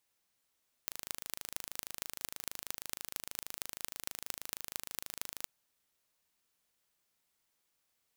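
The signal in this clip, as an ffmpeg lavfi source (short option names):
-f lavfi -i "aevalsrc='0.398*eq(mod(n,1677),0)*(0.5+0.5*eq(mod(n,10062),0))':d=4.59:s=44100"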